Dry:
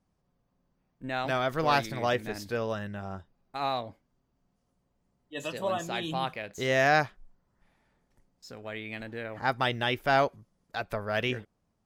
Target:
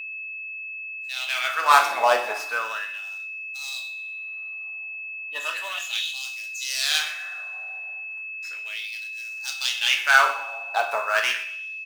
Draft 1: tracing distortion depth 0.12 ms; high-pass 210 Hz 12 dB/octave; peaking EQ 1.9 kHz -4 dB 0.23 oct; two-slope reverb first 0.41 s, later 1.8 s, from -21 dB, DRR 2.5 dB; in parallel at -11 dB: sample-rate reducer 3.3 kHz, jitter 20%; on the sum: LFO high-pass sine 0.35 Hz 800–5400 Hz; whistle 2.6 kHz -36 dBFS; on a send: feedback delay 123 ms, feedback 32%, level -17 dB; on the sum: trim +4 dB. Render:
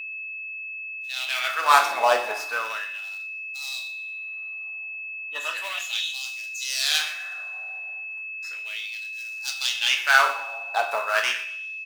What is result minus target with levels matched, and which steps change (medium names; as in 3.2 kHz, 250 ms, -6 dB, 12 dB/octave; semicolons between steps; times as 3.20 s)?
sample-rate reducer: distortion +6 dB
change: sample-rate reducer 7.4 kHz, jitter 20%